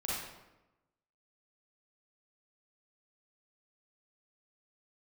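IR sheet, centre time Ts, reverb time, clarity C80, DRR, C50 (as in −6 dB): 83 ms, 1.0 s, 1.5 dB, −7.0 dB, −4.0 dB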